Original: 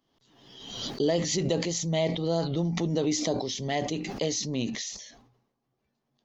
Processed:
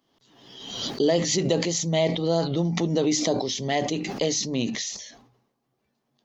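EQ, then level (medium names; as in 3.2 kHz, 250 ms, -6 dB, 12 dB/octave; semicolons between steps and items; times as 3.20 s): bass shelf 67 Hz -10 dB; hum notches 50/100/150 Hz; +4.5 dB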